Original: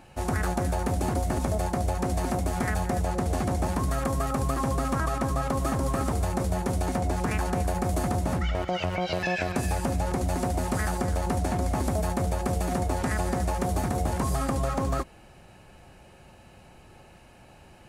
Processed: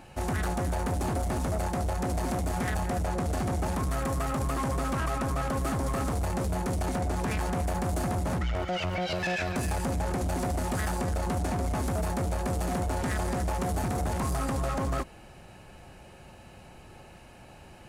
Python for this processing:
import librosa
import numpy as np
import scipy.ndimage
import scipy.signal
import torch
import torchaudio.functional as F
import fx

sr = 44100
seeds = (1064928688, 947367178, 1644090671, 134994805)

y = 10.0 ** (-27.0 / 20.0) * np.tanh(x / 10.0 ** (-27.0 / 20.0))
y = F.gain(torch.from_numpy(y), 2.0).numpy()